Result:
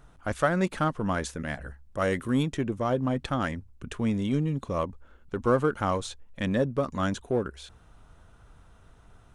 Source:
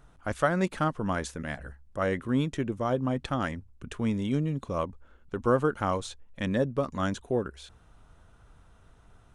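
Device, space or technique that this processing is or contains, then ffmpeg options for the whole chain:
parallel distortion: -filter_complex "[0:a]asettb=1/sr,asplit=3[a][b][c];[a]atrim=end=1.984[d];[b]atrim=start=1.98:end=2.43,asetpts=PTS-STARTPTS,afade=t=in:d=0.004:c=qsin,afade=t=out:st=0.446:d=0.004:c=qsin,aemphasis=mode=production:type=50kf[e];[c]atrim=start=2.426[f];[d][e]acrossfade=d=0.004:c1=hsin:c2=qsin[g];[g][f]acrossfade=d=0.004:c1=qsin:c2=hsin,asplit=2[h][i];[i]asoftclip=type=hard:threshold=-29dB,volume=-11dB[j];[h][j]amix=inputs=2:normalize=0"

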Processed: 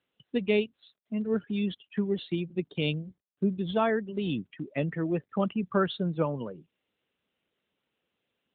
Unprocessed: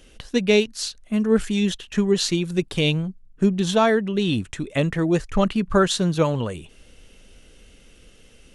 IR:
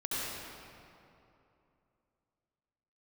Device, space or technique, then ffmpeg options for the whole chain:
mobile call with aggressive noise cancelling: -af "highpass=f=130:w=0.5412,highpass=f=130:w=1.3066,afftdn=nr=24:nf=-31,volume=-7.5dB" -ar 8000 -c:a libopencore_amrnb -b:a 12200

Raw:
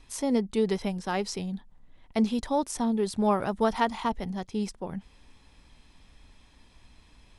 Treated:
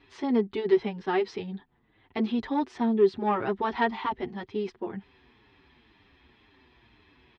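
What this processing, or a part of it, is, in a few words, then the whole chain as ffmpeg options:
barber-pole flanger into a guitar amplifier: -filter_complex "[0:a]asplit=2[a][b];[b]adelay=7.2,afreqshift=-2[c];[a][c]amix=inputs=2:normalize=1,asoftclip=type=tanh:threshold=-19.5dB,highpass=94,equalizer=f=180:t=q:w=4:g=-7,equalizer=f=380:t=q:w=4:g=10,equalizer=f=570:t=q:w=4:g=-8,equalizer=f=1.8k:t=q:w=4:g=4,lowpass=f=3.7k:w=0.5412,lowpass=f=3.7k:w=1.3066,volume=4dB"

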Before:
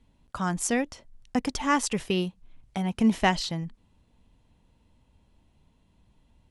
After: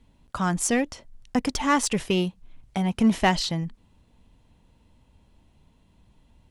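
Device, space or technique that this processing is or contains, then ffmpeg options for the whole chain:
parallel distortion: -filter_complex "[0:a]asplit=2[a][b];[b]asoftclip=type=hard:threshold=-25dB,volume=-4.5dB[c];[a][c]amix=inputs=2:normalize=0"

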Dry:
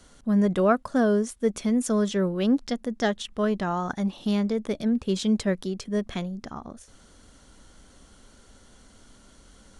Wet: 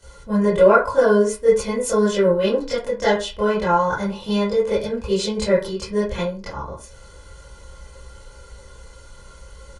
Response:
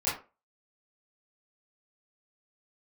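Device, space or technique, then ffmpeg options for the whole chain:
microphone above a desk: -filter_complex "[0:a]aecho=1:1:2:0.8[a];[1:a]atrim=start_sample=2205[b];[a][b]afir=irnorm=-1:irlink=0,volume=-2dB"

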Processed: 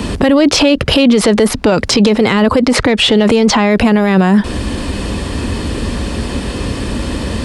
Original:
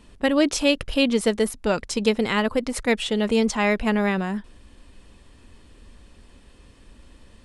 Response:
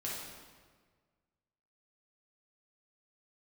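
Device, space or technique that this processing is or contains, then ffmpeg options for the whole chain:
mastering chain: -filter_complex "[0:a]highpass=58,equalizer=f=4.7k:t=o:w=0.35:g=3.5,acrossover=split=82|490|4800[a][b][c][d];[a]acompressor=threshold=-57dB:ratio=4[e];[b]acompressor=threshold=-30dB:ratio=4[f];[c]acompressor=threshold=-28dB:ratio=4[g];[d]acompressor=threshold=-50dB:ratio=4[h];[e][f][g][h]amix=inputs=4:normalize=0,acompressor=threshold=-34dB:ratio=2,asoftclip=type=tanh:threshold=-22dB,tiltshelf=f=880:g=3,alimiter=level_in=35dB:limit=-1dB:release=50:level=0:latency=1,asettb=1/sr,asplit=3[i][j][k];[i]atrim=end=2.464[l];[j]atrim=start=2.46:end=3.04,asetpts=PTS-STARTPTS,afade=t=in:d=0.004:c=qsin,afade=t=out:st=0.576:d=0.004:c=qsin,lowpass=10k[m];[k]atrim=start=3.036[n];[l][m]acrossfade=d=0.004:c1=hsin:c2=qsin[o];[o][n]acrossfade=d=0.004:c1=qsin:c2=hsin,volume=-2dB"

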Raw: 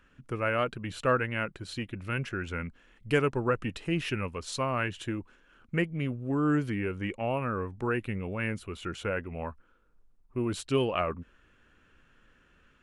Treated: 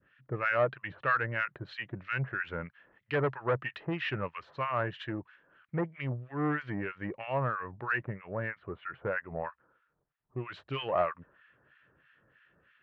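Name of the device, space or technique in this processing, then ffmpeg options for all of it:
guitar amplifier with harmonic tremolo: -filter_complex "[0:a]asettb=1/sr,asplit=3[a][b][c];[a]atrim=end=8.084[d];[b]atrim=start=8.08:end=9.44,asetpts=PTS-STARTPTS,afade=t=in:d=0.004:c=qsin,afade=t=out:st=1.356:d=0.004:c=qsin,lowpass=1.7k[e];[c]atrim=start=9.436[f];[d][e]acrossfade=d=0.004:c1=hsin:c2=qsin[g];[g][f]acrossfade=d=0.004:c1=qsin:c2=hsin,acrossover=split=1200[h][i];[h]aeval=exprs='val(0)*(1-1/2+1/2*cos(2*PI*3.1*n/s))':c=same[j];[i]aeval=exprs='val(0)*(1-1/2-1/2*cos(2*PI*3.1*n/s))':c=same[k];[j][k]amix=inputs=2:normalize=0,asoftclip=type=tanh:threshold=-26dB,highpass=110,equalizer=f=130:t=q:w=4:g=8,equalizer=f=240:t=q:w=4:g=-7,equalizer=f=610:t=q:w=4:g=5,equalizer=f=1.8k:t=q:w=4:g=9,lowpass=f=3.7k:w=0.5412,lowpass=f=3.7k:w=1.3066,adynamicequalizer=threshold=0.00355:dfrequency=1000:dqfactor=0.99:tfrequency=1000:tqfactor=0.99:attack=5:release=100:ratio=0.375:range=4:mode=boostabove:tftype=bell"

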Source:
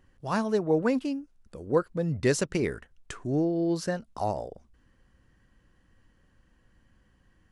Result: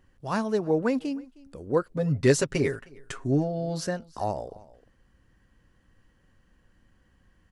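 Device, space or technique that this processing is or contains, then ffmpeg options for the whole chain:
ducked delay: -filter_complex "[0:a]asettb=1/sr,asplit=3[a][b][c];[a]atrim=end=1.954[d];[b]atrim=start=1.95:end=3.88,asetpts=PTS-STARTPTS,afade=t=in:d=0.004:c=qsin,afade=t=out:st=1.926:d=0.004:c=qsin,aecho=1:1:7.4:0.89,atrim=end_sample=85113[e];[c]atrim=start=3.876[f];[d][e]acrossfade=d=0.004:c1=hsin:c2=qsin[g];[g][f]acrossfade=d=0.004:c1=qsin:c2=hsin,asplit=3[h][i][j];[i]adelay=312,volume=-7dB[k];[j]apad=whole_len=345338[l];[k][l]sidechaincompress=threshold=-45dB:ratio=5:attack=28:release=950[m];[h][m]amix=inputs=2:normalize=0"

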